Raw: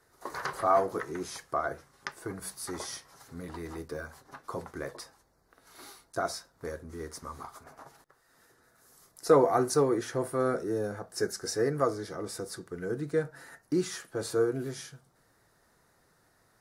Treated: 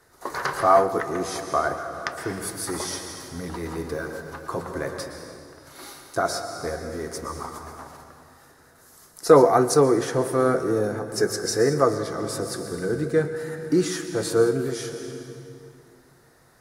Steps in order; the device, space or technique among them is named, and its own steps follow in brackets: compressed reverb return (on a send at -4 dB: reverb RT60 2.3 s, pre-delay 0.108 s + compressor, threshold -32 dBFS, peak gain reduction 14 dB); on the sum: gain +7.5 dB

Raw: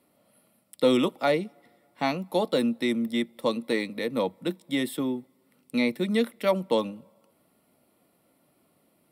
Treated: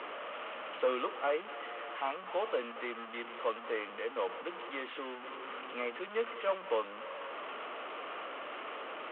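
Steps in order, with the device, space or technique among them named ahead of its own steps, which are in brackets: digital answering machine (BPF 320–3300 Hz; delta modulation 16 kbps, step -30 dBFS; speaker cabinet 450–3600 Hz, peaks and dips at 450 Hz +5 dB, 1200 Hz +10 dB, 3000 Hz +7 dB); gain -8 dB

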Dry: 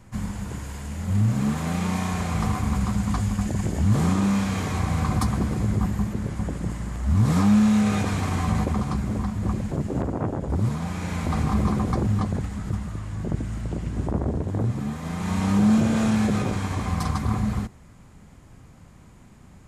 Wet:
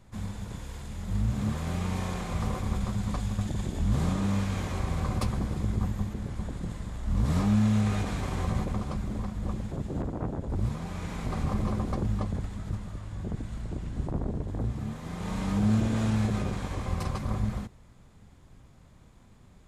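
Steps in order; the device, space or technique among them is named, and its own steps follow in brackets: octave pedal (harmoniser -12 st -1 dB); gain -8 dB

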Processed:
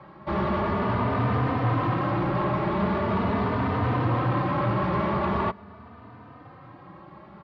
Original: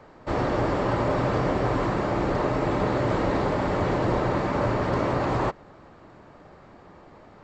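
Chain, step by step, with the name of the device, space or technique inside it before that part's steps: barber-pole flanger into a guitar amplifier (endless flanger 3.2 ms +0.42 Hz; soft clip -26.5 dBFS, distortion -12 dB; speaker cabinet 76–4000 Hz, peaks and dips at 79 Hz +9 dB, 120 Hz +6 dB, 200 Hz +8 dB, 490 Hz -4 dB, 1100 Hz +7 dB); gain +4 dB

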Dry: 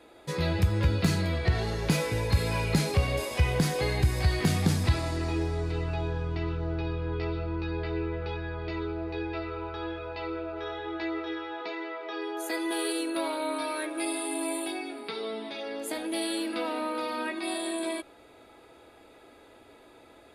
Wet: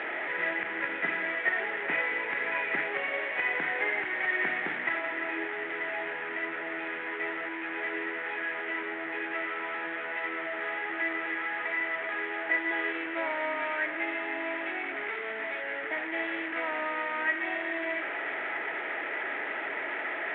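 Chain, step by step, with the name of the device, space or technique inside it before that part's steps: digital answering machine (BPF 350–3300 Hz; delta modulation 16 kbps, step -30 dBFS; speaker cabinet 440–3100 Hz, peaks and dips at 500 Hz -9 dB, 750 Hz -3 dB, 1100 Hz -8 dB, 1900 Hz +10 dB, 2800 Hz -5 dB); gain +3.5 dB

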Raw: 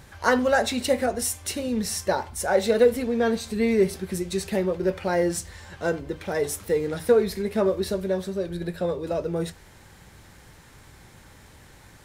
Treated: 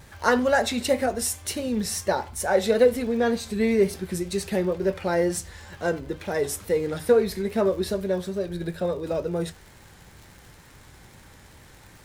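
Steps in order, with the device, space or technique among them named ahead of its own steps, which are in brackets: vinyl LP (wow and flutter; crackle 78/s -39 dBFS; pink noise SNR 42 dB)

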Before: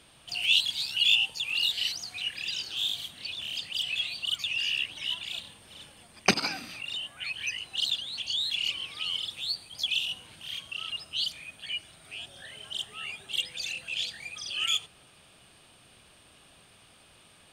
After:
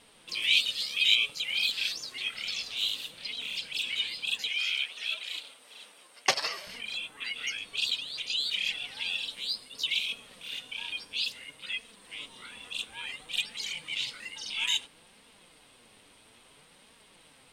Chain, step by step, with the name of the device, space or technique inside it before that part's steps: alien voice (ring modulator 360 Hz; flange 0.59 Hz, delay 4.1 ms, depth 6.4 ms, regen +46%); 4.49–6.67 Bessel high-pass 520 Hz, order 2; gain +6 dB

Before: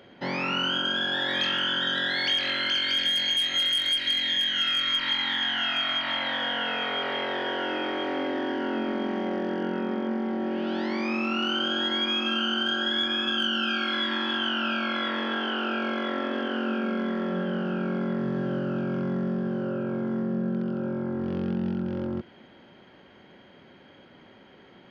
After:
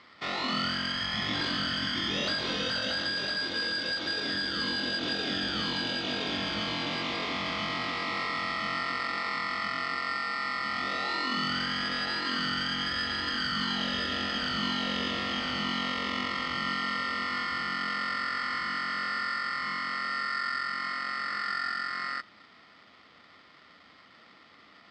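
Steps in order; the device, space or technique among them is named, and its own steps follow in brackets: ring modulator pedal into a guitar cabinet (polarity switched at an audio rate 1600 Hz; speaker cabinet 100–4300 Hz, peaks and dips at 120 Hz -5 dB, 200 Hz +4 dB, 290 Hz +3 dB, 920 Hz -5 dB, 1600 Hz -7 dB, 2400 Hz -3 dB)

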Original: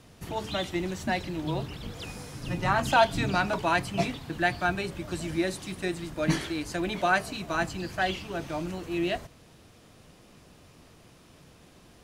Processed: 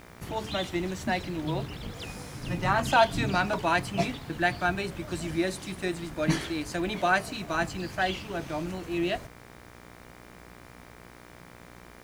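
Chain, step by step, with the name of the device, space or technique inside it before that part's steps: video cassette with head-switching buzz (buzz 60 Hz, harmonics 40, -51 dBFS -2 dB/oct; white noise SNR 34 dB)

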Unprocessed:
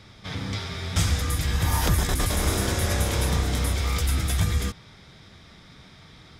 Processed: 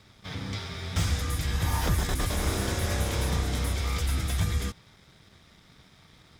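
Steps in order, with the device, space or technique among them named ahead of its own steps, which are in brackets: early transistor amplifier (crossover distortion -55.5 dBFS; slew limiter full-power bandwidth 200 Hz); gain -3.5 dB

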